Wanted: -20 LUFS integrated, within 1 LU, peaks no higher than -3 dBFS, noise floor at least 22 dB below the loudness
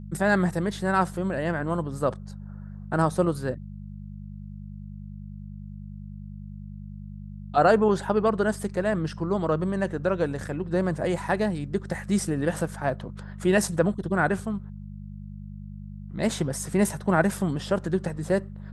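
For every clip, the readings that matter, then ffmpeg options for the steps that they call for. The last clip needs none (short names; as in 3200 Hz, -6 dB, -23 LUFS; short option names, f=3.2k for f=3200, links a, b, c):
hum 50 Hz; harmonics up to 200 Hz; hum level -36 dBFS; loudness -26.0 LUFS; peak -7.0 dBFS; loudness target -20.0 LUFS
-> -af "bandreject=f=50:t=h:w=4,bandreject=f=100:t=h:w=4,bandreject=f=150:t=h:w=4,bandreject=f=200:t=h:w=4"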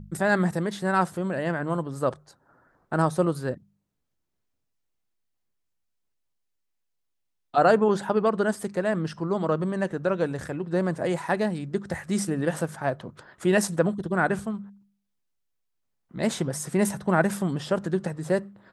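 hum none; loudness -26.0 LUFS; peak -7.5 dBFS; loudness target -20.0 LUFS
-> -af "volume=6dB,alimiter=limit=-3dB:level=0:latency=1"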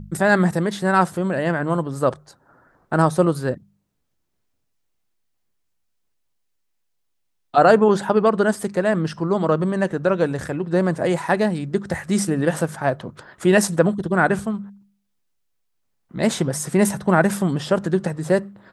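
loudness -20.5 LUFS; peak -3.0 dBFS; noise floor -71 dBFS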